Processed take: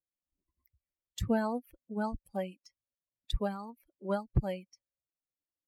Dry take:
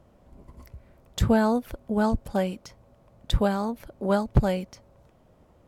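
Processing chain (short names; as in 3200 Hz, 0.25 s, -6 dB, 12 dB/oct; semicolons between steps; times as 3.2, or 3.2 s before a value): per-bin expansion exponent 2; gain -6.5 dB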